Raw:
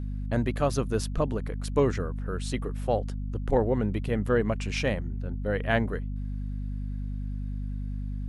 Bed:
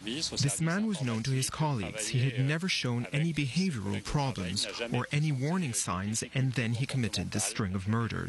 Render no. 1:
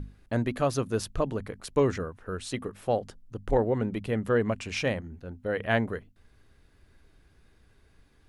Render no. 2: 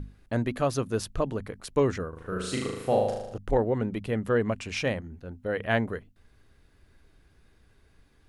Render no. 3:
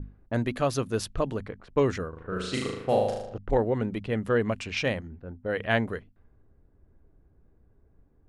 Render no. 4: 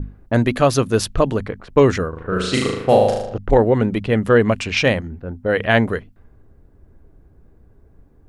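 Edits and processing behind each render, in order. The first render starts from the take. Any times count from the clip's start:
hum notches 50/100/150/200/250 Hz
2.09–3.38 s: flutter echo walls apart 6.5 m, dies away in 0.92 s
level-controlled noise filter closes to 620 Hz, open at -25.5 dBFS; dynamic bell 3.3 kHz, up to +3 dB, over -43 dBFS, Q 0.73
trim +11 dB; peak limiter -2 dBFS, peak gain reduction 3 dB

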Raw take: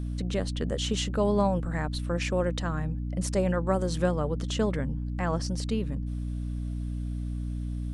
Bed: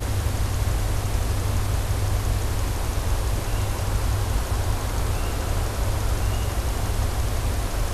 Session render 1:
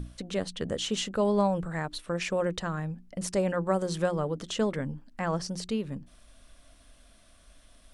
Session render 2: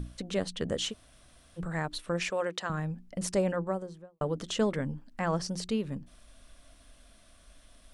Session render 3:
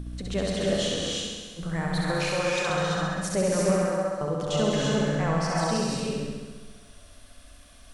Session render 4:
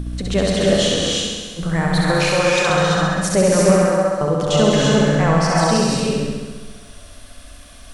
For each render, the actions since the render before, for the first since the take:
hum notches 60/120/180/240/300/360 Hz
0.91–1.59 s: room tone, crossfade 0.06 s; 2.30–2.70 s: frequency weighting A; 3.29–4.21 s: studio fade out
flutter echo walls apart 11.4 m, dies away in 1.4 s; gated-style reverb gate 370 ms rising, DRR -2 dB
trim +10 dB

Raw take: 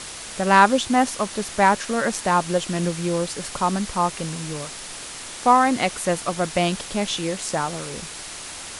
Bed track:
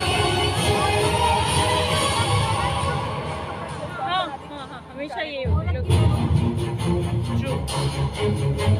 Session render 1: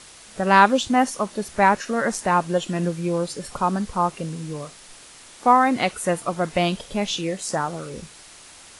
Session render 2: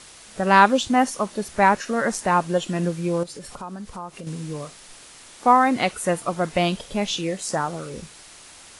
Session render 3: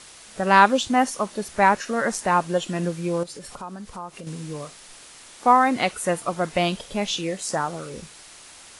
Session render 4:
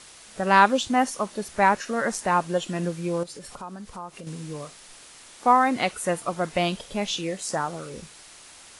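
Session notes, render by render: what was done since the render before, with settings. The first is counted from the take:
noise print and reduce 10 dB
3.23–4.27 s: compression 3:1, threshold -35 dBFS
bass shelf 340 Hz -3 dB
trim -2 dB

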